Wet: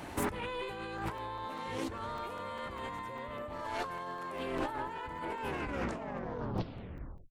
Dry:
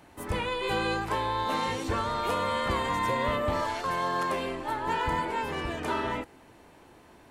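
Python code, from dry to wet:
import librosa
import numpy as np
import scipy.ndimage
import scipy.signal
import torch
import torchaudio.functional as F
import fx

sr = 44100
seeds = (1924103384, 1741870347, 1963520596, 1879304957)

y = fx.tape_stop_end(x, sr, length_s=1.87)
y = fx.dynamic_eq(y, sr, hz=5500.0, q=0.83, threshold_db=-49.0, ratio=4.0, max_db=-5)
y = fx.over_compress(y, sr, threshold_db=-40.0, ratio=-1.0)
y = fx.buffer_crackle(y, sr, first_s=0.98, period_s=0.2, block=128, kind='zero')
y = fx.doppler_dist(y, sr, depth_ms=0.34)
y = F.gain(torch.from_numpy(y), 1.0).numpy()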